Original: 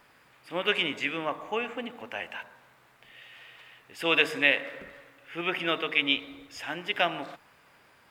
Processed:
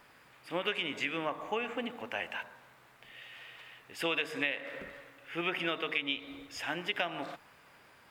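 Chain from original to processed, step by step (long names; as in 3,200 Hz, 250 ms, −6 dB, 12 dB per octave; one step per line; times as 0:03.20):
downward compressor 6 to 1, threshold −29 dBFS, peak gain reduction 12.5 dB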